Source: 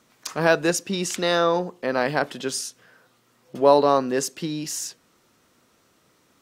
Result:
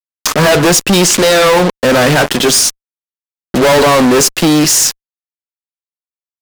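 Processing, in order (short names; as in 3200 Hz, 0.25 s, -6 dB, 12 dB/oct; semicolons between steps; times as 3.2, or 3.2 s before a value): fuzz box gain 38 dB, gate -39 dBFS; 1.04–1.46 Doppler distortion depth 0.29 ms; gain +6.5 dB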